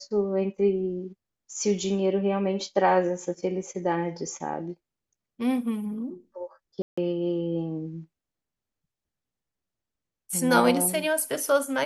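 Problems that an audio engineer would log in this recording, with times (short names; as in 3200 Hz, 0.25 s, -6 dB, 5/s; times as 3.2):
6.82–6.97 gap 0.155 s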